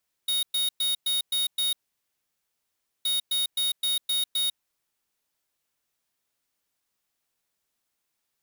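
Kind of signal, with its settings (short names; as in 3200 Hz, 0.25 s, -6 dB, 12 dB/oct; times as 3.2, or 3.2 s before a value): beep pattern square 3740 Hz, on 0.15 s, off 0.11 s, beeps 6, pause 1.32 s, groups 2, -25.5 dBFS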